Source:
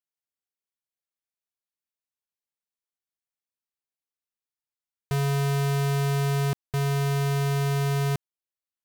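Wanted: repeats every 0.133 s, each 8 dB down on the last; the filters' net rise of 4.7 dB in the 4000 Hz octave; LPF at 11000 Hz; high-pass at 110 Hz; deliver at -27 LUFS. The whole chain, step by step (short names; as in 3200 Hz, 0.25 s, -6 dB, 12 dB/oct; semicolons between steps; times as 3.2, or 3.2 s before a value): HPF 110 Hz; LPF 11000 Hz; bell 4000 Hz +6 dB; feedback echo 0.133 s, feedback 40%, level -8 dB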